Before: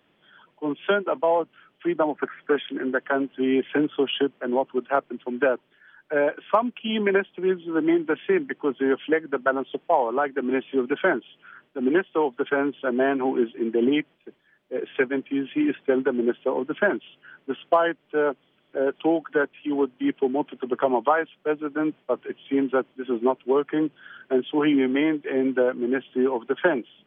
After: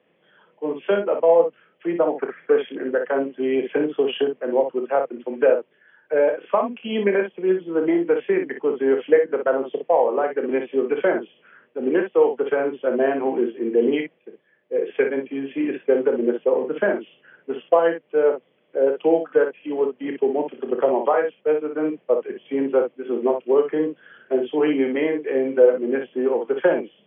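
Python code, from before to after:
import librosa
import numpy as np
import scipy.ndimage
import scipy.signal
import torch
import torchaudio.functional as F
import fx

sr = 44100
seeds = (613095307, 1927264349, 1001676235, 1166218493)

y = fx.cabinet(x, sr, low_hz=110.0, low_slope=12, high_hz=2800.0, hz=(120.0, 280.0, 490.0, 940.0, 1400.0), db=(-7, -4, 9, -3, -7))
y = fx.room_early_taps(y, sr, ms=(30, 59), db=(-9.5, -7.0))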